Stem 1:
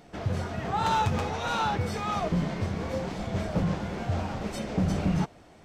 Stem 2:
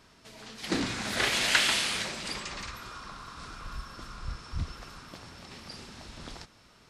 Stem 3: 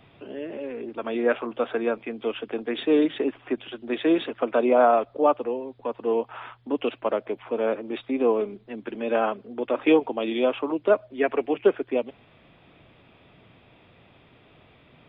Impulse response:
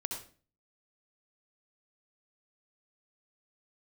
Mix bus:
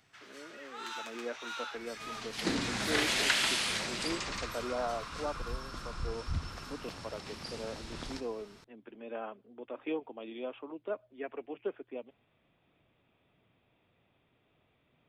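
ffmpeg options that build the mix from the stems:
-filter_complex "[0:a]highpass=frequency=1300:width=0.5412,highpass=frequency=1300:width=1.3066,volume=-10.5dB,asplit=2[link_01][link_02];[link_02]volume=-7dB[link_03];[1:a]acompressor=threshold=-34dB:ratio=1.5,adelay=1750,volume=-2dB,asplit=2[link_04][link_05];[link_05]volume=-7.5dB[link_06];[2:a]volume=-17dB[link_07];[3:a]atrim=start_sample=2205[link_08];[link_03][link_06]amix=inputs=2:normalize=0[link_09];[link_09][link_08]afir=irnorm=-1:irlink=0[link_10];[link_01][link_04][link_07][link_10]amix=inputs=4:normalize=0"

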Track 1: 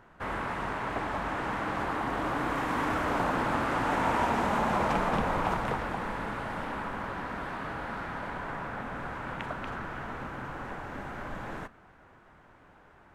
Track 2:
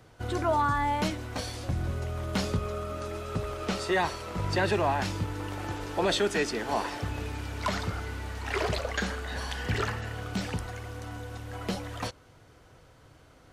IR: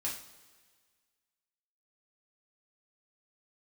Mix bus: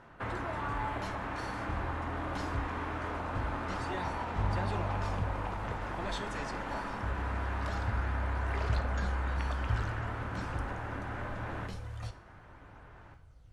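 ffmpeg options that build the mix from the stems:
-filter_complex "[0:a]lowpass=4500,acompressor=threshold=-37dB:ratio=6,volume=-2dB,asplit=2[link_01][link_02];[link_02]volume=-4dB[link_03];[1:a]asubboost=boost=8:cutoff=96,aphaser=in_gain=1:out_gain=1:delay=3.5:decay=0.38:speed=0.23:type=sinusoidal,lowpass=frequency=12000:width=0.5412,lowpass=frequency=12000:width=1.3066,volume=-16dB,asplit=2[link_04][link_05];[link_05]volume=-9.5dB[link_06];[2:a]atrim=start_sample=2205[link_07];[link_03][link_06]amix=inputs=2:normalize=0[link_08];[link_08][link_07]afir=irnorm=-1:irlink=0[link_09];[link_01][link_04][link_09]amix=inputs=3:normalize=0"

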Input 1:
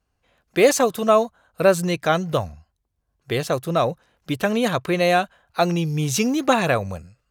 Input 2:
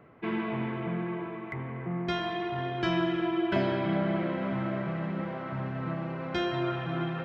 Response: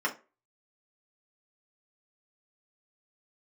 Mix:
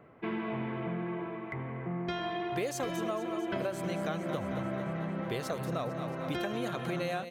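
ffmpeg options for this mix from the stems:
-filter_complex "[0:a]adelay=2000,volume=-9.5dB,asplit=2[link_01][link_02];[link_02]volume=-11.5dB[link_03];[1:a]equalizer=frequency=590:width=1.4:gain=2.5,volume=-2dB[link_04];[link_03]aecho=0:1:224|448|672|896|1120|1344|1568|1792|2016:1|0.58|0.336|0.195|0.113|0.0656|0.0381|0.0221|0.0128[link_05];[link_01][link_04][link_05]amix=inputs=3:normalize=0,acompressor=threshold=-30dB:ratio=12"

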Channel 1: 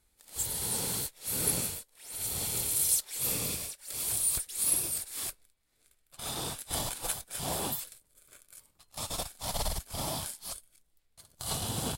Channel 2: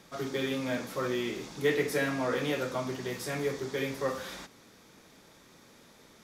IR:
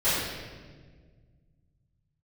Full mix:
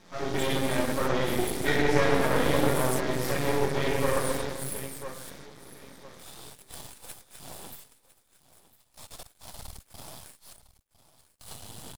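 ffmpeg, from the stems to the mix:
-filter_complex "[0:a]volume=-6.5dB,asplit=2[link_01][link_02];[link_02]volume=-17.5dB[link_03];[1:a]lowpass=7300,bandreject=frequency=2700:width=5.1,volume=0dB,asplit=3[link_04][link_05][link_06];[link_05]volume=-6.5dB[link_07];[link_06]volume=-4dB[link_08];[2:a]atrim=start_sample=2205[link_09];[link_07][link_09]afir=irnorm=-1:irlink=0[link_10];[link_03][link_08]amix=inputs=2:normalize=0,aecho=0:1:1005|2010|3015|4020:1|0.27|0.0729|0.0197[link_11];[link_01][link_04][link_10][link_11]amix=inputs=4:normalize=0,aeval=exprs='max(val(0),0)':channel_layout=same"

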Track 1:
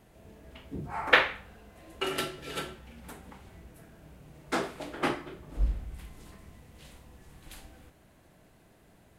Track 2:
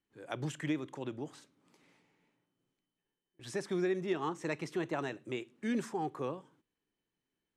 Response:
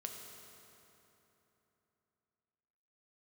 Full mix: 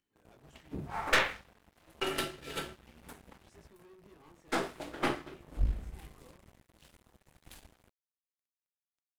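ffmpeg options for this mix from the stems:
-filter_complex "[0:a]aeval=exprs='sgn(val(0))*max(abs(val(0))-0.00316,0)':channel_layout=same,volume=1.5dB[link_01];[1:a]acompressor=mode=upward:threshold=-54dB:ratio=2.5,asoftclip=type=tanh:threshold=-37dB,flanger=delay=18.5:depth=5:speed=0.51,volume=-13.5dB[link_02];[link_01][link_02]amix=inputs=2:normalize=0,aeval=exprs='(tanh(10*val(0)+0.55)-tanh(0.55))/10':channel_layout=same"

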